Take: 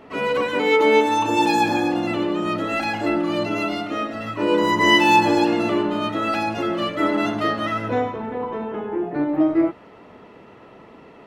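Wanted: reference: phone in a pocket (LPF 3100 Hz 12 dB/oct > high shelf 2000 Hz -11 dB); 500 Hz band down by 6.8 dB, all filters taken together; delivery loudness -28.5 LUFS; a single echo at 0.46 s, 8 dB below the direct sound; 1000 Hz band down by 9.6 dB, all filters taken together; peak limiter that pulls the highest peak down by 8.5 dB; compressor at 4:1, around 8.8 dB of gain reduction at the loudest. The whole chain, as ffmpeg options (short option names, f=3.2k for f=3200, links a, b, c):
-af "equalizer=f=500:t=o:g=-7,equalizer=f=1k:t=o:g=-7,acompressor=threshold=-25dB:ratio=4,alimiter=limit=-24dB:level=0:latency=1,lowpass=3.1k,highshelf=f=2k:g=-11,aecho=1:1:460:0.398,volume=5dB"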